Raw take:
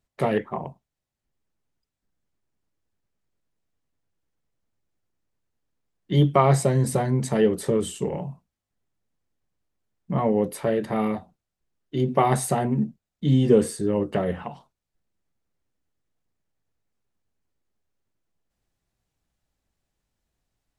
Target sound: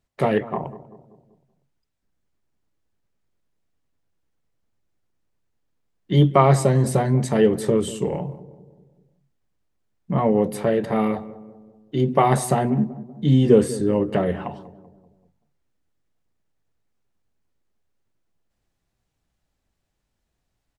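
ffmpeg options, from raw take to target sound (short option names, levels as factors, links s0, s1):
-filter_complex "[0:a]highshelf=f=7300:g=-4.5,asplit=2[s0][s1];[s1]adelay=192,lowpass=f=870:p=1,volume=0.178,asplit=2[s2][s3];[s3]adelay=192,lowpass=f=870:p=1,volume=0.54,asplit=2[s4][s5];[s5]adelay=192,lowpass=f=870:p=1,volume=0.54,asplit=2[s6][s7];[s7]adelay=192,lowpass=f=870:p=1,volume=0.54,asplit=2[s8][s9];[s9]adelay=192,lowpass=f=870:p=1,volume=0.54[s10];[s0][s2][s4][s6][s8][s10]amix=inputs=6:normalize=0,volume=1.41"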